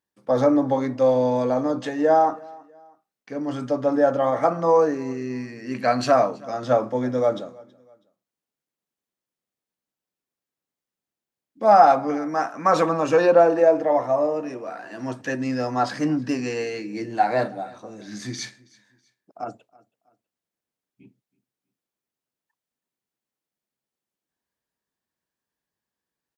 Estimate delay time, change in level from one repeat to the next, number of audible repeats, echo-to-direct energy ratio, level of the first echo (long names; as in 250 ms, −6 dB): 324 ms, −9.0 dB, 2, −23.5 dB, −24.0 dB